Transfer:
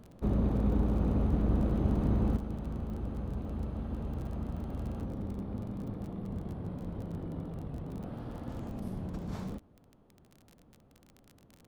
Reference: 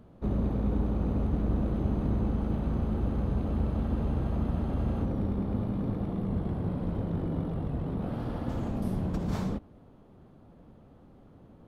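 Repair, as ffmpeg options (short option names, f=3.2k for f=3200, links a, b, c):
-af "adeclick=t=4,asetnsamples=n=441:p=0,asendcmd='2.37 volume volume 7.5dB',volume=0dB"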